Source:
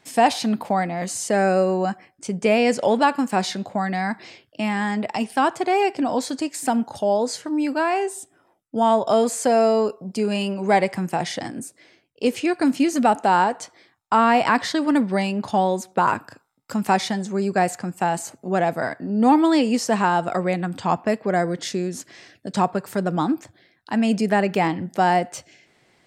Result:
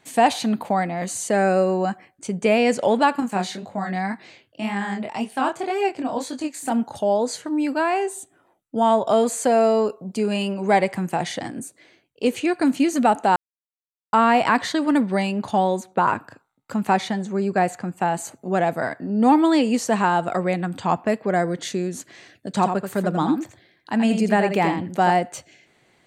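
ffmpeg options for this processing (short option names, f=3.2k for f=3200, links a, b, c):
-filter_complex "[0:a]asettb=1/sr,asplit=3[a][b][c];[a]atrim=end=3.204[d];[b]atrim=start=3.2:end=6.72,asetpts=PTS-STARTPTS,afade=t=in:d=0.004:c=qsin,afade=t=out:st=3.516:d=0.004:c=qsin,flanger=delay=20:depth=7.2:speed=1.9[e];[c]atrim=start=6.716[f];[d][e]acrossfade=d=0.004:c1=hsin:c2=qsin[g];[g][f]acrossfade=d=0.004:c1=qsin:c2=hsin,asettb=1/sr,asplit=3[h][i][j];[h]atrim=end=15.804[k];[i]atrim=start=15.8:end=18.19,asetpts=PTS-STARTPTS,afade=t=in:d=0.004:c=qsin,afade=t=out:st=2.386:d=0.004:c=qsin,highshelf=f=5.1k:g=-8[l];[j]atrim=start=18.186[m];[k][l]acrossfade=d=0.004:c1=hsin:c2=qsin[n];[n][m]acrossfade=d=0.004:c1=qsin:c2=hsin,asettb=1/sr,asplit=3[o][p][q];[o]atrim=end=22.524[r];[p]atrim=start=22.52:end=25.11,asetpts=PTS-STARTPTS,afade=t=in:d=0.004:c=qsin,afade=t=out:st=2.586:d=0.004:c=qsin,aecho=1:1:83:0.447,atrim=end_sample=114219[s];[q]atrim=start=25.106[t];[r][s]acrossfade=d=0.004:c1=hsin:c2=qsin[u];[u][t]acrossfade=d=0.004:c1=qsin:c2=hsin,asplit=3[v][w][x];[v]atrim=end=13.36,asetpts=PTS-STARTPTS,afade=t=out:st=13.356:d=0.004:c=hsin[y];[w]atrim=start=13.36:end=14.13,asetpts=PTS-STARTPTS,volume=0[z];[x]atrim=start=14.13,asetpts=PTS-STARTPTS,afade=t=in:d=0.004:c=hsin[aa];[y][z][aa]concat=n=3:v=0:a=1,bandreject=f=5.2k:w=6.1"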